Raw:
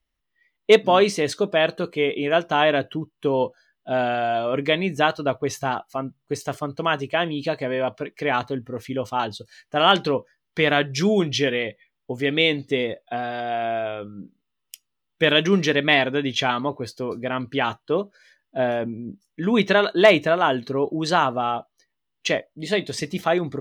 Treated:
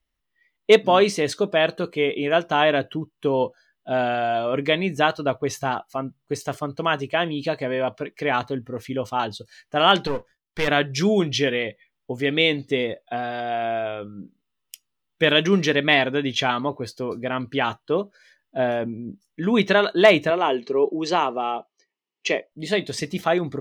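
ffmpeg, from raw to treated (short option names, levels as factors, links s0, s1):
-filter_complex "[0:a]asettb=1/sr,asplit=3[s0][s1][s2];[s0]atrim=end=10.074[s3];[s1]atrim=start=10.07:end=10.68,asetpts=PTS-STARTPTS,afade=t=in:d=0.004:c=qsin,afade=t=out:st=0.606:d=0.004:c=qsin,aeval=exprs='if(lt(val(0),0),0.251*val(0),val(0))':c=same[s4];[s2]atrim=start=10.676[s5];[s3][s4]acrossfade=d=0.004:c1=hsin:c2=qsin[s6];[s6][s5]acrossfade=d=0.004:c1=qsin:c2=hsin,asettb=1/sr,asplit=3[s7][s8][s9];[s7]atrim=end=20.304[s10];[s8]atrim=start=20.3:end=22.52,asetpts=PTS-STARTPTS,afade=t=in:d=0.004:c=qsin,afade=t=out:st=2.216:d=0.004:c=qsin,highpass=f=200:w=0.5412,highpass=f=200:w=1.3066,equalizer=f=260:t=q:w=4:g=-5,equalizer=f=400:t=q:w=4:g=6,equalizer=f=620:t=q:w=4:g=-3,equalizer=f=1500:t=q:w=4:g=-10,equalizer=f=2400:t=q:w=4:g=4,equalizer=f=3700:t=q:w=4:g=-6,lowpass=f=6900:w=0.5412,lowpass=f=6900:w=1.3066[s11];[s9]atrim=start=22.516[s12];[s10][s11]acrossfade=d=0.004:c1=hsin:c2=qsin[s13];[s13][s12]acrossfade=d=0.004:c1=qsin:c2=hsin"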